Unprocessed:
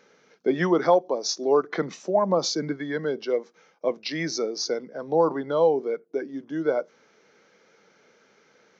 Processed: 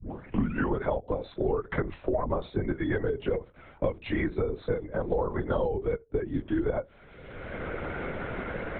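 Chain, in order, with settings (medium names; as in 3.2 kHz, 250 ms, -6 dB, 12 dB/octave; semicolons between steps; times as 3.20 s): tape start-up on the opening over 0.72 s; compression 3:1, threshold -24 dBFS, peak gain reduction 8.5 dB; LPC vocoder at 8 kHz whisper; distance through air 230 m; three bands compressed up and down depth 100%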